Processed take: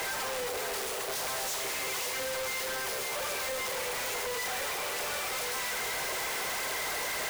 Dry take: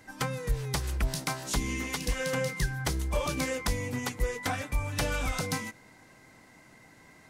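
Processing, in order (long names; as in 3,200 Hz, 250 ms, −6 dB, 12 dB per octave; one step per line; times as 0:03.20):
sign of each sample alone
Butterworth high-pass 370 Hz 96 dB per octave
in parallel at +3 dB: brickwall limiter −27.5 dBFS, peak gain reduction 7.5 dB
on the sum: four-comb reverb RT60 1.2 s, combs from 28 ms, DRR 7 dB
phase shifter 1.8 Hz, delay 2.9 ms, feedback 27%
echo with a time of its own for lows and highs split 990 Hz, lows 268 ms, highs 549 ms, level −9.5 dB
log-companded quantiser 2 bits
level −8 dB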